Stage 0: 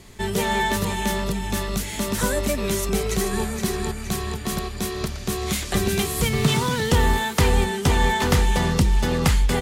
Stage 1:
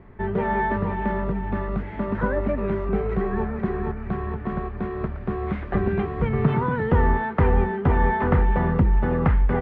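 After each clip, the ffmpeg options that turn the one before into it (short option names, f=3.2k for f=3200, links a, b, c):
-af "lowpass=f=1.7k:w=0.5412,lowpass=f=1.7k:w=1.3066"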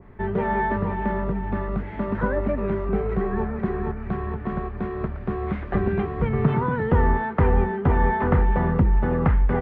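-af "adynamicequalizer=threshold=0.0112:dfrequency=2100:dqfactor=0.7:tfrequency=2100:tqfactor=0.7:attack=5:release=100:ratio=0.375:range=1.5:mode=cutabove:tftype=highshelf"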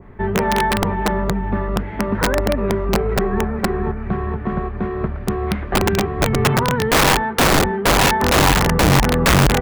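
-af "aeval=exprs='(mod(5.31*val(0)+1,2)-1)/5.31':c=same,volume=5.5dB"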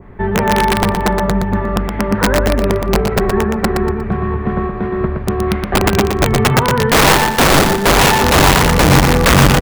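-af "aecho=1:1:119|238|357|476:0.531|0.17|0.0544|0.0174,volume=3.5dB"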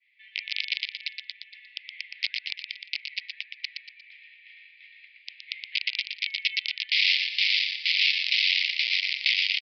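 -filter_complex "[0:a]asuperpass=centerf=4000:order=20:qfactor=0.77,aresample=11025,aresample=44100,asplit=2[a][b];[b]adelay=233.2,volume=-15dB,highshelf=f=4k:g=-5.25[c];[a][c]amix=inputs=2:normalize=0,volume=-4.5dB"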